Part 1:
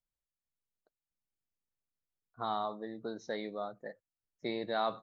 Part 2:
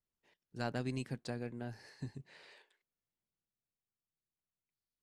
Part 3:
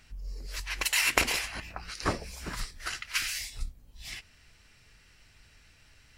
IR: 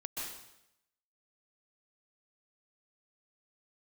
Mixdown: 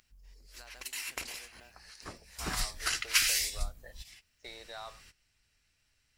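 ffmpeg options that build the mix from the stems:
-filter_complex "[0:a]volume=-0.5dB,asplit=2[link_01][link_02];[1:a]acompressor=threshold=-44dB:ratio=6,acrusher=bits=8:mode=log:mix=0:aa=0.000001,volume=-1.5dB[link_03];[2:a]volume=0.5dB[link_04];[link_02]apad=whole_len=272313[link_05];[link_04][link_05]sidechaingate=range=-18dB:threshold=-57dB:ratio=16:detection=peak[link_06];[link_01][link_03]amix=inputs=2:normalize=0,highpass=730,acompressor=threshold=-51dB:ratio=2,volume=0dB[link_07];[link_06][link_07]amix=inputs=2:normalize=0,highshelf=frequency=3500:gain=8"

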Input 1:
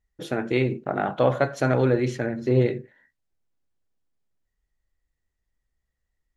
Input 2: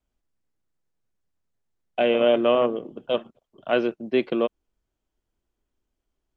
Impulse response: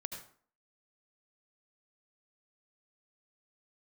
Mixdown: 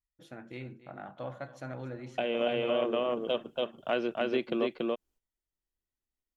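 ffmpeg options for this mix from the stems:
-filter_complex "[0:a]equalizer=frequency=420:width=5.9:gain=-12,volume=-18dB,asplit=3[link_01][link_02][link_03];[link_02]volume=-16dB[link_04];[1:a]aemphasis=mode=production:type=cd,agate=range=-17dB:threshold=-52dB:ratio=16:detection=peak,adelay=200,volume=-1dB,asplit=2[link_05][link_06];[link_06]volume=-3dB[link_07];[link_03]apad=whole_len=289702[link_08];[link_05][link_08]sidechaincompress=threshold=-47dB:ratio=8:attack=16:release=287[link_09];[link_04][link_07]amix=inputs=2:normalize=0,aecho=0:1:283:1[link_10];[link_01][link_09][link_10]amix=inputs=3:normalize=0,acompressor=threshold=-29dB:ratio=2.5"

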